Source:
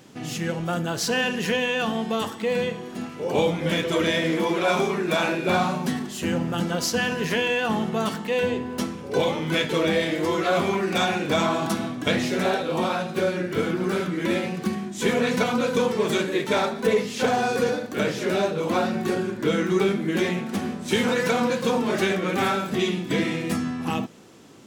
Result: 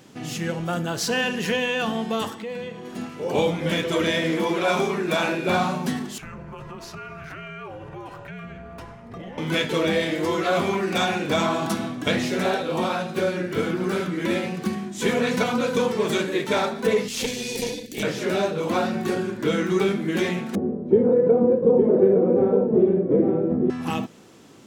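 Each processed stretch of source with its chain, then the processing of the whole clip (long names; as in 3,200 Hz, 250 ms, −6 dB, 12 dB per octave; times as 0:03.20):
0:02.34–0:02.85: high-shelf EQ 6,100 Hz −5.5 dB + downward compressor 2 to 1, threshold −35 dBFS
0:06.18–0:09.38: frequency shifter −320 Hz + three-way crossover with the lows and the highs turned down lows −14 dB, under 220 Hz, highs −15 dB, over 2,100 Hz + downward compressor 5 to 1, threshold −34 dBFS
0:17.08–0:18.03: inverse Chebyshev band-stop filter 680–1,400 Hz + high-shelf EQ 2,500 Hz +11 dB + tube saturation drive 16 dB, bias 0.75
0:20.55–0:23.70: low-pass with resonance 450 Hz, resonance Q 2.9 + single-tap delay 863 ms −5 dB
whole clip: no processing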